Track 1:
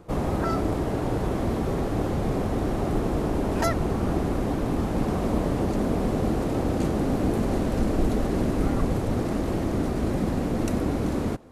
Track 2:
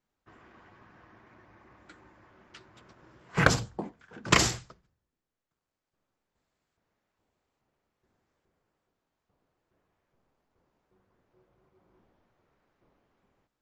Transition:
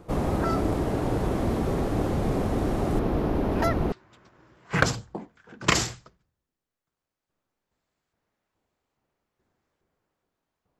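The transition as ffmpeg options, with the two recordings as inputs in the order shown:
-filter_complex "[0:a]asettb=1/sr,asplit=3[a][b][c];[a]atrim=end=2.994[d];[b]atrim=start=2.99:end=3.92,asetpts=PTS-STARTPTS,afade=t=in:d=0.004:c=qsin,afade=t=out:st=0.926:d=0.004:c=qsin,equalizer=f=8.2k:t=o:w=1:g=-13.5[e];[c]atrim=start=3.916[f];[d][e]acrossfade=d=0.004:c1=hsin:c2=qsin[g];[g][f]acrossfade=d=0.004:c1=qsin:c2=hsin,apad=whole_dur=10.79,atrim=end=10.79,atrim=end=3.922[h];[1:a]atrim=start=2.558:end=9.43[i];[h][i]acrossfade=d=0.004:c1=hsin:c2=hsin"

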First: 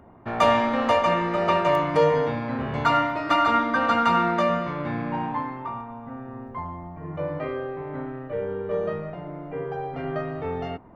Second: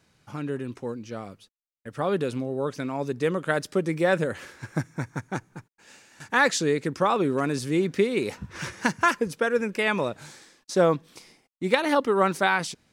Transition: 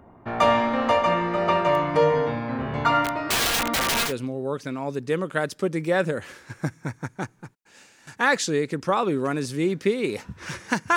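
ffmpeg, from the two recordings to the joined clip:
-filter_complex "[0:a]asplit=3[a][b][c];[a]afade=t=out:st=3.04:d=0.02[d];[b]aeval=exprs='(mod(7.5*val(0)+1,2)-1)/7.5':c=same,afade=t=in:st=3.04:d=0.02,afade=t=out:st=4.13:d=0.02[e];[c]afade=t=in:st=4.13:d=0.02[f];[d][e][f]amix=inputs=3:normalize=0,apad=whole_dur=10.96,atrim=end=10.96,atrim=end=4.13,asetpts=PTS-STARTPTS[g];[1:a]atrim=start=2.16:end=9.09,asetpts=PTS-STARTPTS[h];[g][h]acrossfade=d=0.1:c1=tri:c2=tri"

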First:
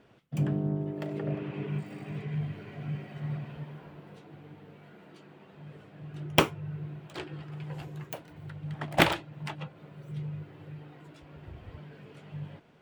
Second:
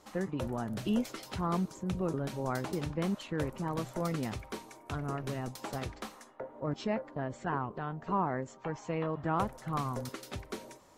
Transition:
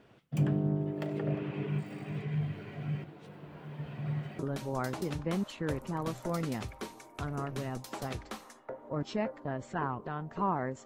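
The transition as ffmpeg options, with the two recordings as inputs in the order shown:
-filter_complex "[0:a]apad=whole_dur=10.85,atrim=end=10.85,asplit=2[a][b];[a]atrim=end=3.042[c];[b]atrim=start=3.038:end=4.392,asetpts=PTS-STARTPTS,areverse[d];[1:a]atrim=start=2.098:end=8.56[e];[c][d]acrossfade=d=0.004:c1=hsin:c2=hsin[f];[f][e]acrossfade=d=0.004:c1=hsin:c2=hsin"

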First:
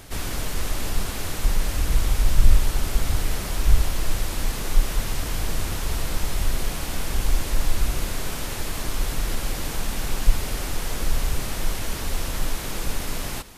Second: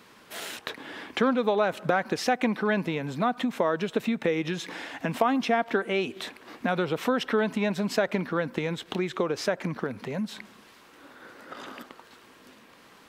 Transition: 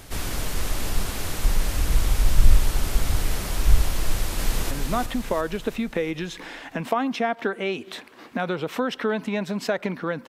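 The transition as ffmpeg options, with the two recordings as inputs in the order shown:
-filter_complex "[0:a]apad=whole_dur=10.28,atrim=end=10.28,atrim=end=4.712[a];[1:a]atrim=start=2.998:end=8.57[b];[a][b]acrossfade=d=0.004:c1=hsin:c2=hsin,asplit=2[c][d];[d]afade=t=in:st=4.03:d=0.01,afade=t=out:st=4.71:d=0.01,aecho=0:1:350|700|1050|1400|1750|2100:0.630957|0.315479|0.157739|0.0788697|0.0394348|0.0197174[e];[c][e]amix=inputs=2:normalize=0"

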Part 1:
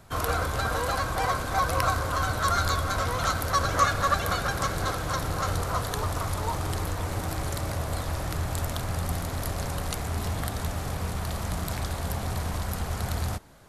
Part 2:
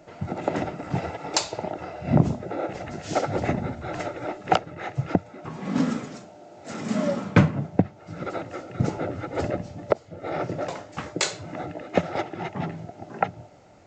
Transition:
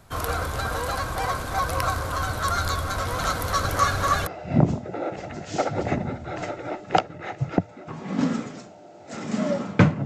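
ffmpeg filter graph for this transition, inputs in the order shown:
-filter_complex "[0:a]asplit=3[a][b][c];[a]afade=t=out:st=3.07:d=0.02[d];[b]aecho=1:1:289:0.631,afade=t=in:st=3.07:d=0.02,afade=t=out:st=4.27:d=0.02[e];[c]afade=t=in:st=4.27:d=0.02[f];[d][e][f]amix=inputs=3:normalize=0,apad=whole_dur=10.05,atrim=end=10.05,atrim=end=4.272[g];[1:a]atrim=start=1.838:end=7.62[h];[g][h]acrossfade=d=0.004:c1=hsin:c2=hsin"

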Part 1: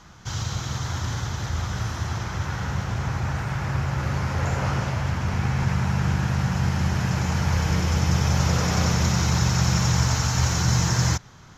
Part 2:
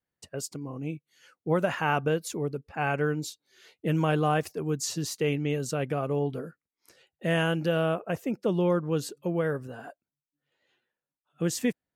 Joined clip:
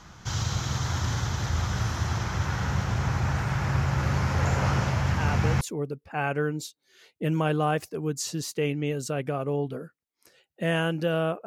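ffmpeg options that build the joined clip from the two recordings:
-filter_complex "[1:a]asplit=2[a][b];[0:a]apad=whole_dur=11.46,atrim=end=11.46,atrim=end=5.612[c];[b]atrim=start=2.238:end=8.09[d];[a]atrim=start=1.73:end=2.24,asetpts=PTS-STARTPTS,volume=-7dB,afade=t=in:d=0.004:c=hsin,afade=t=out:st=0.506:d=0.004:c=hsin,adelay=5100[e];[c][d]acrossfade=d=0.004:c1=hsin:c2=hsin[f];[f][e]amix=inputs=2:normalize=0"

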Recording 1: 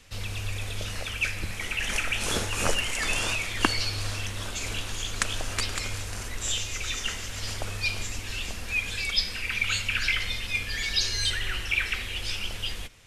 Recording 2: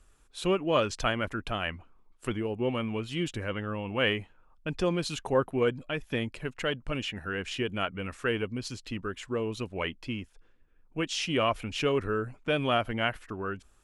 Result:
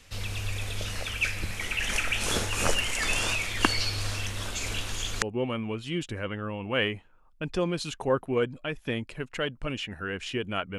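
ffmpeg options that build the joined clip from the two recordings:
-filter_complex "[0:a]apad=whole_dur=10.78,atrim=end=10.78,atrim=end=5.222[a];[1:a]atrim=start=2.468:end=8.03[b];[a][b]acrossfade=d=0.004:c1=hsin:c2=hsin"

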